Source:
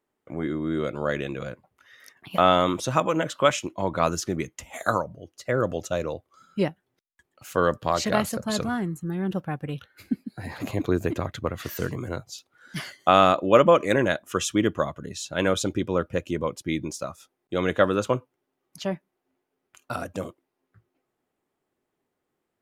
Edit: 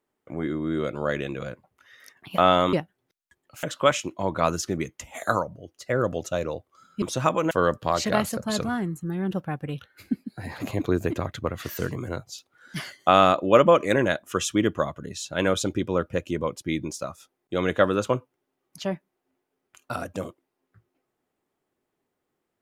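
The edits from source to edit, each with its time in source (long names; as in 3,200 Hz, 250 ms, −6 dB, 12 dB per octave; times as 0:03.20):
0:02.73–0:03.22: swap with 0:06.61–0:07.51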